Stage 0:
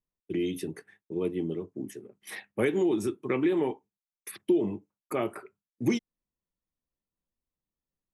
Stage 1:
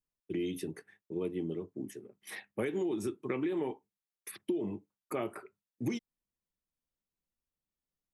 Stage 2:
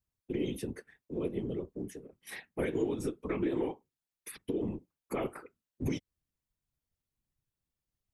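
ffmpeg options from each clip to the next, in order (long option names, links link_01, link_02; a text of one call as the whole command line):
ffmpeg -i in.wav -af "acompressor=threshold=-26dB:ratio=6,volume=-3.5dB" out.wav
ffmpeg -i in.wav -af "lowshelf=frequency=100:gain=10,afftfilt=real='hypot(re,im)*cos(2*PI*random(0))':imag='hypot(re,im)*sin(2*PI*random(1))':win_size=512:overlap=0.75,volume=6dB" out.wav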